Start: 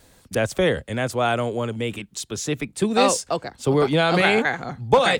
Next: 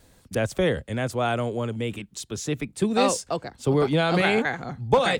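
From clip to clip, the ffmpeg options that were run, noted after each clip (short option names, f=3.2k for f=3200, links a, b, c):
-af "lowshelf=f=340:g=4.5,volume=-4.5dB"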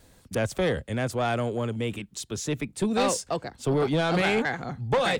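-af "asoftclip=type=tanh:threshold=-17.5dB"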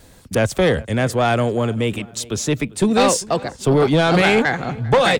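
-filter_complex "[0:a]asplit=2[a][b];[b]adelay=397,lowpass=f=3.8k:p=1,volume=-21.5dB,asplit=2[c][d];[d]adelay=397,lowpass=f=3.8k:p=1,volume=0.41,asplit=2[e][f];[f]adelay=397,lowpass=f=3.8k:p=1,volume=0.41[g];[a][c][e][g]amix=inputs=4:normalize=0,volume=9dB"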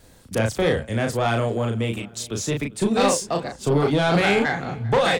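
-filter_complex "[0:a]asplit=2[a][b];[b]adelay=35,volume=-4dB[c];[a][c]amix=inputs=2:normalize=0,volume=-5.5dB"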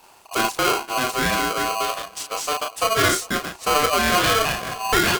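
-af "aeval=exprs='val(0)*sgn(sin(2*PI*890*n/s))':c=same"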